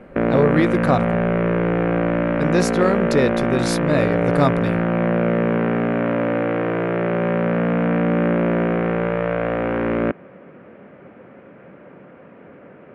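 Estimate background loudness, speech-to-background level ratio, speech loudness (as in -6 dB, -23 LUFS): -20.0 LUFS, -1.5 dB, -21.5 LUFS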